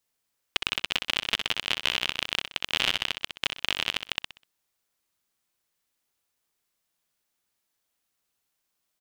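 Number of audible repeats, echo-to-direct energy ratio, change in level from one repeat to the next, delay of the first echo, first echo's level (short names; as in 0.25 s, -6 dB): 3, -6.5 dB, -9.5 dB, 63 ms, -7.0 dB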